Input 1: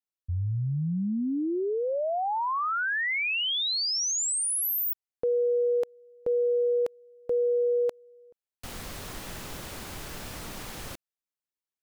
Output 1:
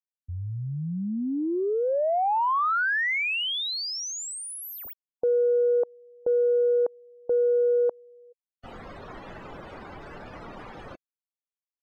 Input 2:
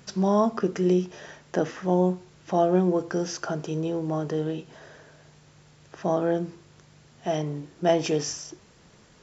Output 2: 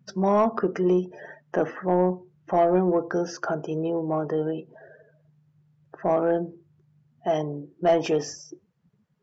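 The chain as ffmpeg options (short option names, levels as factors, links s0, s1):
-filter_complex "[0:a]afftdn=nr=28:nf=-42,asplit=2[s0][s1];[s1]highpass=f=720:p=1,volume=4.47,asoftclip=type=tanh:threshold=0.355[s2];[s0][s2]amix=inputs=2:normalize=0,lowpass=f=1300:p=1,volume=0.501"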